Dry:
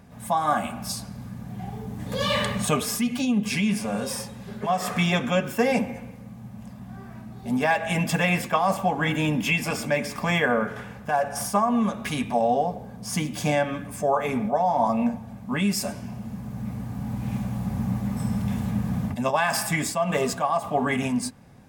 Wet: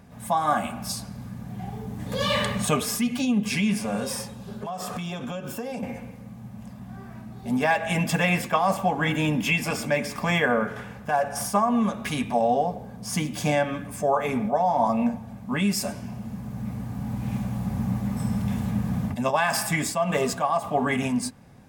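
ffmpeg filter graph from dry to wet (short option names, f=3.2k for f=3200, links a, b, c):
-filter_complex "[0:a]asettb=1/sr,asplit=3[a][b][c];[a]atrim=end=4.344[d];[b]atrim=start=4.34:end=5.83,asetpts=PTS-STARTPTS,afade=t=in:d=0.004:c=qsin,afade=t=out:st=1.486:d=0.004:c=qsin,equalizer=f=2k:w=2.7:g=-10,acompressor=threshold=-28dB:ratio=12:attack=3.2:release=140:knee=1:detection=peak[e];[c]atrim=start=5.826[f];[d][e]acrossfade=d=0.004:c1=hsin:c2=qsin[g];[g][f]acrossfade=d=0.004:c1=qsin:c2=hsin"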